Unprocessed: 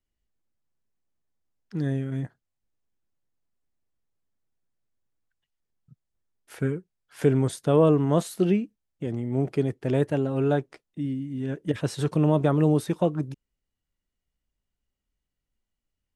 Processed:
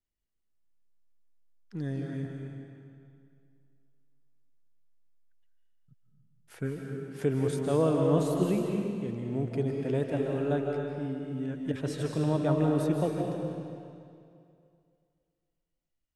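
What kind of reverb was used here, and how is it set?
digital reverb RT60 2.4 s, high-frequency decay 0.9×, pre-delay 0.115 s, DRR 0.5 dB; gain -7 dB

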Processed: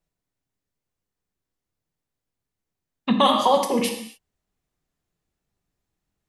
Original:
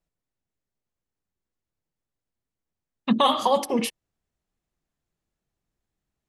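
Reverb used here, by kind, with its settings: non-linear reverb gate 0.3 s falling, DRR 4 dB; gain +1.5 dB

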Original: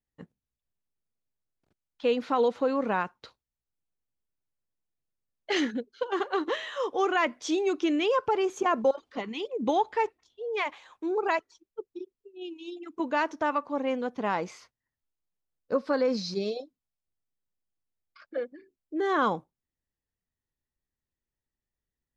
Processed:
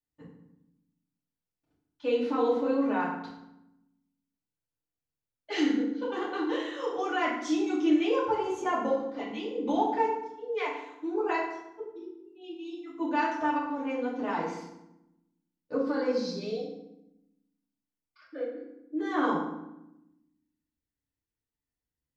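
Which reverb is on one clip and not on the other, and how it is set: FDN reverb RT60 0.86 s, low-frequency decay 1.6×, high-frequency decay 0.7×, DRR -7.5 dB; gain -11 dB

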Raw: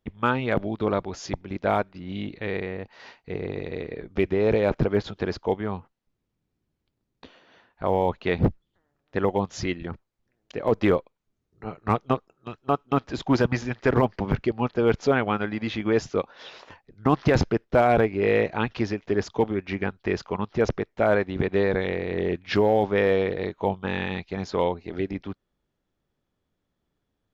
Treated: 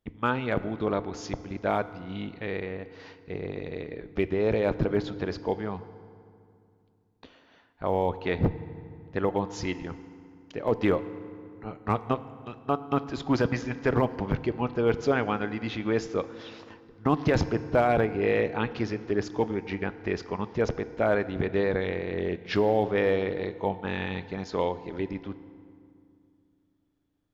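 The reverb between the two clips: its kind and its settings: FDN reverb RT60 2.4 s, low-frequency decay 1.35×, high-frequency decay 0.65×, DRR 13 dB; gain -3.5 dB

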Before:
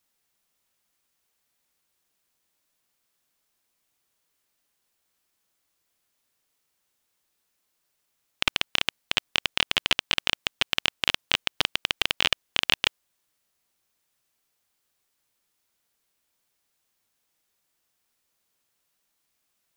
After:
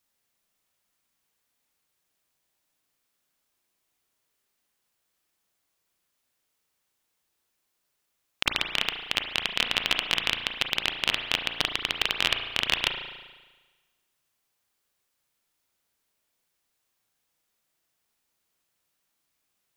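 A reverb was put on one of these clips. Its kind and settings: spring tank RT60 1.3 s, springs 35 ms, chirp 35 ms, DRR 4.5 dB; gain -2 dB

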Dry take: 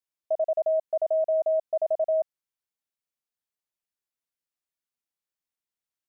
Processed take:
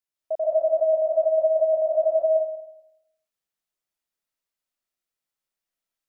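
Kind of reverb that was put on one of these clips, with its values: digital reverb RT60 0.84 s, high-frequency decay 0.7×, pre-delay 0.105 s, DRR -4 dB; gain -1 dB

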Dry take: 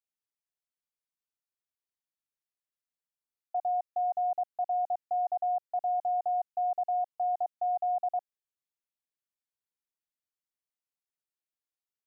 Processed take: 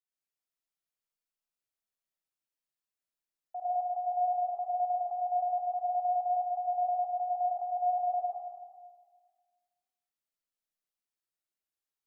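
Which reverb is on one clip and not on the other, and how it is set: digital reverb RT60 1.6 s, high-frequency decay 1×, pre-delay 50 ms, DRR -7 dB; gain -8 dB

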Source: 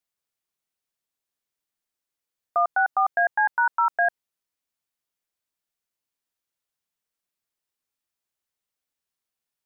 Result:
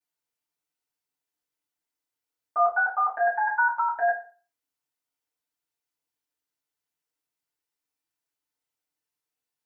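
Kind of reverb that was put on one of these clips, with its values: FDN reverb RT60 0.39 s, low-frequency decay 0.75×, high-frequency decay 0.75×, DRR -10 dB; gain -11.5 dB

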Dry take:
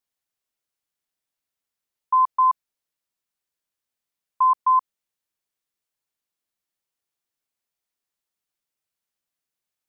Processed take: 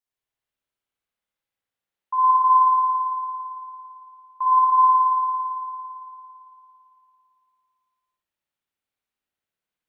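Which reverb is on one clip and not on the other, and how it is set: spring tank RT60 2.9 s, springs 55 ms, chirp 35 ms, DRR -8 dB; gain -7 dB

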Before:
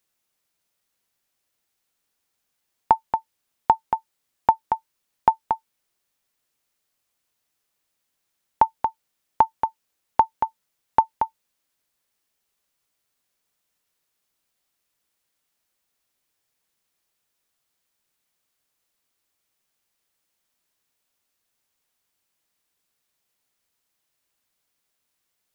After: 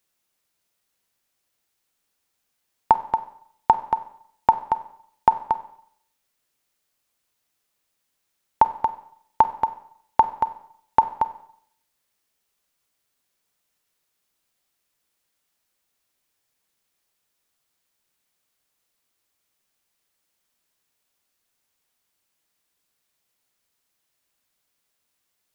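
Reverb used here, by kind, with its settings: Schroeder reverb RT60 0.66 s, combs from 31 ms, DRR 12.5 dB; gain +1 dB

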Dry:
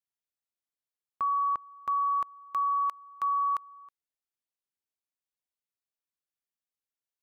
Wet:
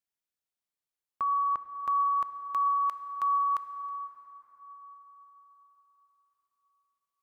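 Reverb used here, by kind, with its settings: plate-style reverb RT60 4.9 s, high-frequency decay 0.5×, DRR 10 dB

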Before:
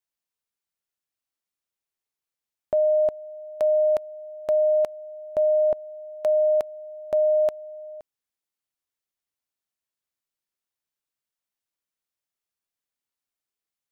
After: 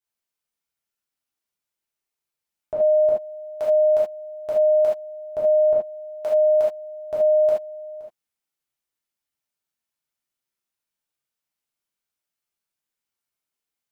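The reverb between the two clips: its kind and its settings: non-linear reverb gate 0.1 s flat, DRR -7.5 dB; gain -5.5 dB

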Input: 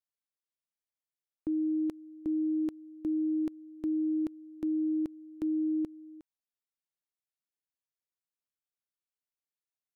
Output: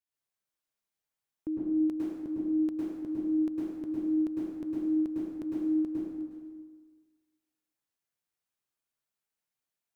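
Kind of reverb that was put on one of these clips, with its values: plate-style reverb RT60 1.5 s, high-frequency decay 0.65×, pre-delay 95 ms, DRR -7 dB; gain -2 dB

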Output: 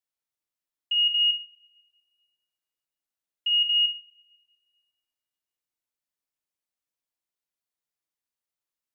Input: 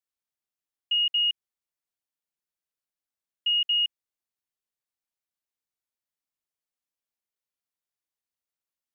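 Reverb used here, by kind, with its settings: two-slope reverb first 0.46 s, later 1.7 s, from -18 dB, DRR 7 dB; gain -1 dB

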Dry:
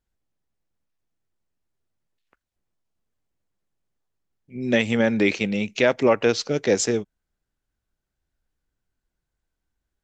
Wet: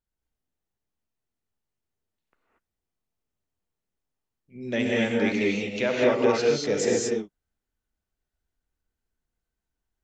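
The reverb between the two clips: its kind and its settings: non-linear reverb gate 0.26 s rising, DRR -4 dB; gain -8.5 dB

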